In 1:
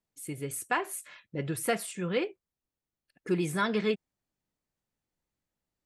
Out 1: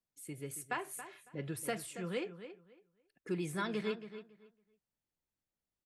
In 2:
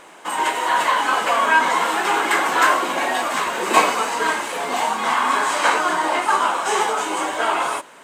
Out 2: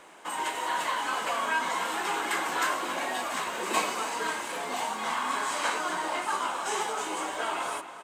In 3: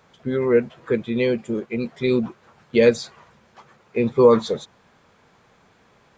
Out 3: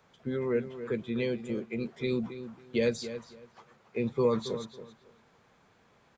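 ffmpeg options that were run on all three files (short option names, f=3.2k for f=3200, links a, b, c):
-filter_complex "[0:a]acrossover=split=210|3000[a][b][c];[b]acompressor=threshold=-28dB:ratio=1.5[d];[a][d][c]amix=inputs=3:normalize=0,asplit=2[e][f];[f]adelay=277,lowpass=f=3.8k:p=1,volume=-11.5dB,asplit=2[g][h];[h]adelay=277,lowpass=f=3.8k:p=1,volume=0.21,asplit=2[i][j];[j]adelay=277,lowpass=f=3.8k:p=1,volume=0.21[k];[e][g][i][k]amix=inputs=4:normalize=0,volume=-7.5dB"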